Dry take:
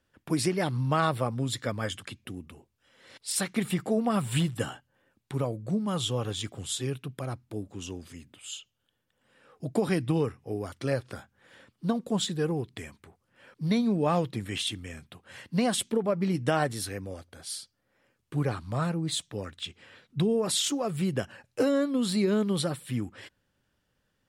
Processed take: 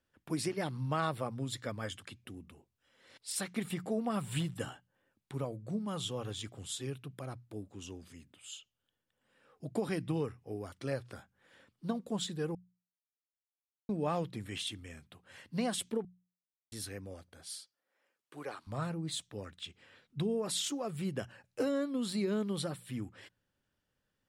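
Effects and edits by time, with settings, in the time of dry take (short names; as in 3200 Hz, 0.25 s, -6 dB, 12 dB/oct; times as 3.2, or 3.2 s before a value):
12.55–13.89 mute
16.05–16.72 mute
17.59–18.67 HPF 450 Hz
whole clip: notches 60/120/180 Hz; gain -7.5 dB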